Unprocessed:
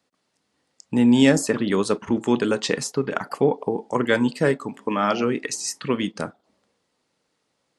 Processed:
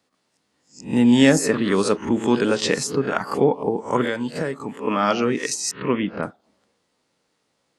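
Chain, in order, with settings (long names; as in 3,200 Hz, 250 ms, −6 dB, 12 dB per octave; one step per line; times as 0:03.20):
peak hold with a rise ahead of every peak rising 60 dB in 0.31 s
0:04.05–0:04.79: downward compressor 6 to 1, threshold −23 dBFS, peak gain reduction 9.5 dB
0:05.71–0:06.23: low-pass filter 2,700 Hz 24 dB per octave
level +1 dB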